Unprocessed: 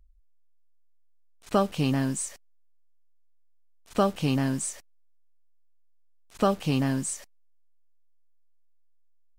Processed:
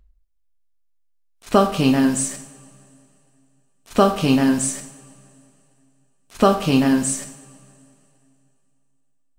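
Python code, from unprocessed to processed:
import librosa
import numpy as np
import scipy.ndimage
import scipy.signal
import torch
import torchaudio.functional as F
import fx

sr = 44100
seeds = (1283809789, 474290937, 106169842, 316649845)

y = fx.noise_reduce_blind(x, sr, reduce_db=9)
y = fx.rev_double_slope(y, sr, seeds[0], early_s=0.65, late_s=2.8, knee_db=-19, drr_db=5.0)
y = F.gain(torch.from_numpy(y), 8.0).numpy()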